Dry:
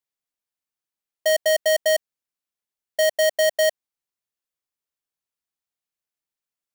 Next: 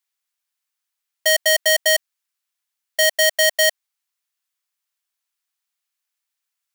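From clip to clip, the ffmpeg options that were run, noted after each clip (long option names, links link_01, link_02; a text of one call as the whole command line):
ffmpeg -i in.wav -af "highpass=1100,volume=8.5dB" out.wav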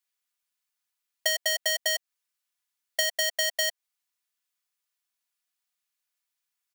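ffmpeg -i in.wav -af "aecho=1:1:4.1:0.46,acompressor=threshold=-18dB:ratio=6,volume=-3.5dB" out.wav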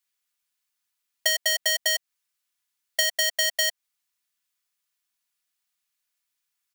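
ffmpeg -i in.wav -af "equalizer=frequency=510:width=0.79:gain=-4.5,volume=3.5dB" out.wav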